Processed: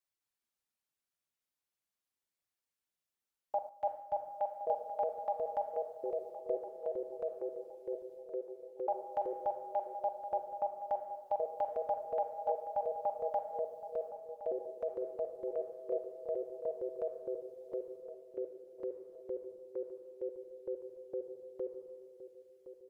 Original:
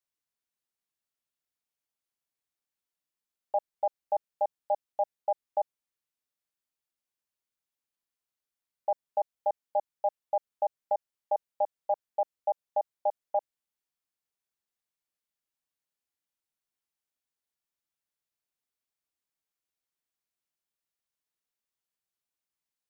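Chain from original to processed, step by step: 4.89–5.45 HPF 380 Hz; reverb removal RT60 1 s; dynamic EQ 570 Hz, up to -4 dB, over -40 dBFS, Q 1.5; transient shaper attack -1 dB, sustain +12 dB; reverb RT60 1.3 s, pre-delay 31 ms, DRR 7.5 dB; echoes that change speed 0.208 s, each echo -4 st, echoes 2; darkening echo 1.066 s, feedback 41%, low-pass 890 Hz, level -12 dB; 3.69–4.14 three-band expander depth 70%; gain -2.5 dB

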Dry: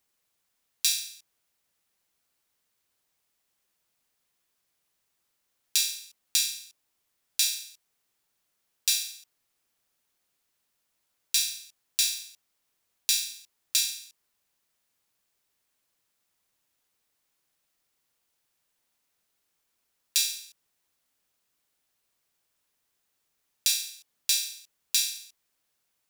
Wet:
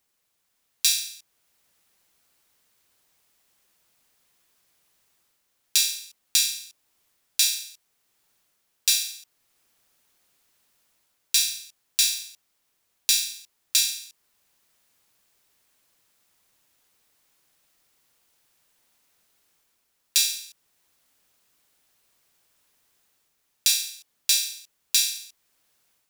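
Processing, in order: AGC gain up to 7 dB; in parallel at -5 dB: soft clip -10.5 dBFS, distortion -17 dB; on the sum: gain -1.5 dB

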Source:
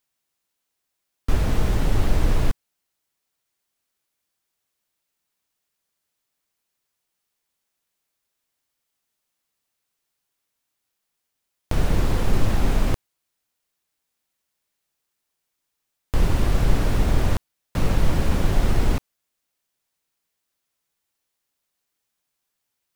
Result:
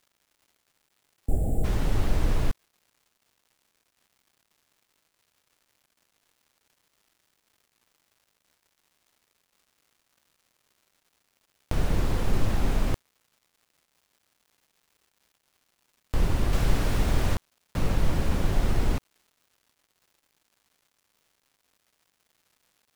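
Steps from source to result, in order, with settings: 0.77–1.64 spectral gain 820–7000 Hz -27 dB; crackle 350/s -49 dBFS; 16.53–17.35 mismatched tape noise reduction encoder only; gain -4.5 dB

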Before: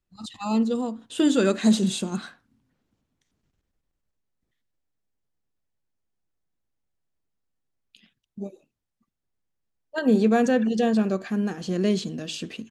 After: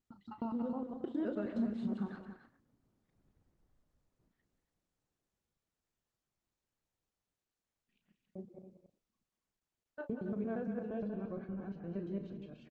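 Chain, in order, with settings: local time reversal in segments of 0.11 s; Doppler pass-by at 4.03, 19 m/s, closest 10 m; LPF 1300 Hz 12 dB/oct; dynamic EQ 370 Hz, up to -3 dB, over -46 dBFS, Q 2.1; compressor 4:1, threshold -41 dBFS, peak gain reduction 11 dB; doubler 35 ms -10 dB; loudspeakers at several distances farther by 64 m -10 dB, 95 m -10 dB; gain +6 dB; Opus 20 kbps 48000 Hz

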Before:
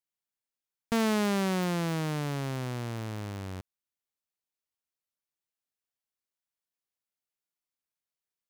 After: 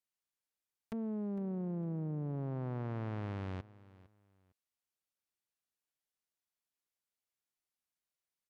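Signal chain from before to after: treble ducked by the level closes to 410 Hz, closed at -28.5 dBFS; feedback echo 0.456 s, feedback 25%, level -20 dB; limiter -31 dBFS, peak gain reduction 11.5 dB; gain -2 dB

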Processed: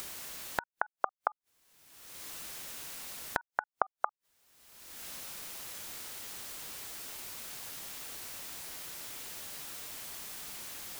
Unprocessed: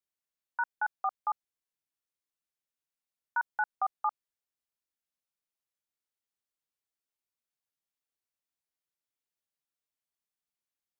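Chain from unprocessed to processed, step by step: upward compressor, threshold -35 dBFS; flipped gate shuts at -32 dBFS, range -38 dB; gain +16.5 dB

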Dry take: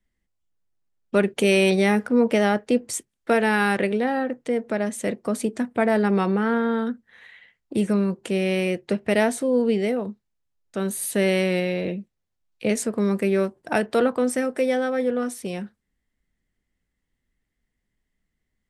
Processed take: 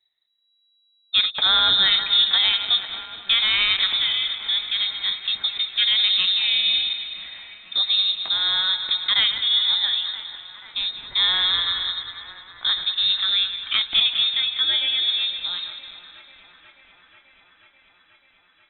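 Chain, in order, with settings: regenerating reverse delay 0.102 s, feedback 73%, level -10.5 dB; on a send: thin delay 0.486 s, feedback 78%, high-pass 1800 Hz, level -13 dB; on the sum: inverted band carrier 3900 Hz

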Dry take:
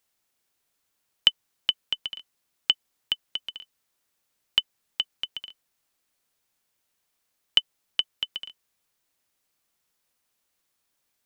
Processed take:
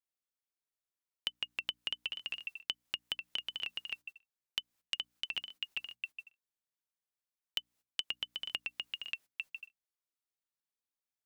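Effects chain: echoes that change speed 81 ms, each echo -1 st, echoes 2, each echo -6 dB; gate -48 dBFS, range -25 dB; in parallel at -0.5 dB: level quantiser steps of 14 dB; on the sum: notches 60/120/180/240/300 Hz; compressor 6:1, threshold -35 dBFS, peak gain reduction 22 dB; soft clip -17 dBFS, distortion -18 dB; gain +1 dB

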